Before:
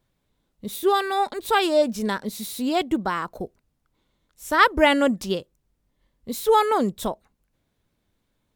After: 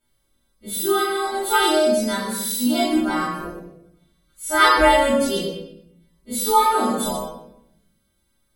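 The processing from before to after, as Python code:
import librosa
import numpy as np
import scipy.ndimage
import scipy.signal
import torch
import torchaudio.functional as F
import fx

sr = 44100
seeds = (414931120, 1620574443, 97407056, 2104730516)

y = fx.freq_snap(x, sr, grid_st=2)
y = fx.chorus_voices(y, sr, voices=2, hz=0.42, base_ms=29, depth_ms=4.9, mix_pct=30)
y = y + 10.0 ** (-10.0 / 20.0) * np.pad(y, (int(121 * sr / 1000.0), 0))[:len(y)]
y = fx.room_shoebox(y, sr, seeds[0], volume_m3=200.0, walls='mixed', distance_m=2.8)
y = y * 10.0 ** (-5.5 / 20.0)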